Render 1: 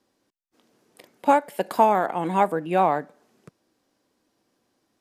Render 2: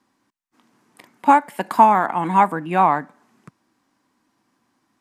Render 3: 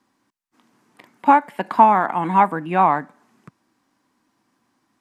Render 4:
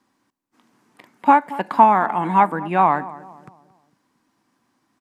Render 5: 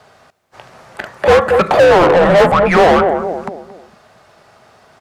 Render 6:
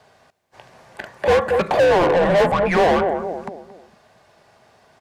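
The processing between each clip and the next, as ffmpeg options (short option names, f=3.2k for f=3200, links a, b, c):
-af "equalizer=f=125:t=o:w=1:g=5,equalizer=f=250:t=o:w=1:g=8,equalizer=f=500:t=o:w=1:g=-7,equalizer=f=1k:t=o:w=1:g=11,equalizer=f=2k:t=o:w=1:g=6,equalizer=f=8k:t=o:w=1:g=4,volume=-2dB"
-filter_complex "[0:a]acrossover=split=4200[a][b];[b]acompressor=threshold=-56dB:ratio=4:attack=1:release=60[c];[a][c]amix=inputs=2:normalize=0"
-filter_complex "[0:a]asplit=2[a][b];[b]adelay=226,lowpass=f=1.1k:p=1,volume=-16dB,asplit=2[c][d];[d]adelay=226,lowpass=f=1.1k:p=1,volume=0.45,asplit=2[e][f];[f]adelay=226,lowpass=f=1.1k:p=1,volume=0.45,asplit=2[g][h];[h]adelay=226,lowpass=f=1.1k:p=1,volume=0.45[i];[a][c][e][g][i]amix=inputs=5:normalize=0"
-filter_complex "[0:a]afreqshift=-360,asplit=2[a][b];[b]highpass=f=720:p=1,volume=35dB,asoftclip=type=tanh:threshold=0dB[c];[a][c]amix=inputs=2:normalize=0,lowpass=f=2k:p=1,volume=-6dB,volume=-1dB"
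-af "bandreject=f=1.3k:w=7,volume=-6.5dB"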